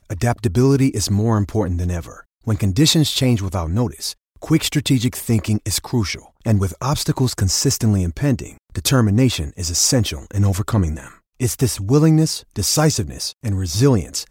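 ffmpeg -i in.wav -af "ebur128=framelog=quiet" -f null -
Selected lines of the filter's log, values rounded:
Integrated loudness:
  I:         -18.6 LUFS
  Threshold: -28.8 LUFS
Loudness range:
  LRA:         2.0 LU
  Threshold: -38.9 LUFS
  LRA low:   -20.0 LUFS
  LRA high:  -18.0 LUFS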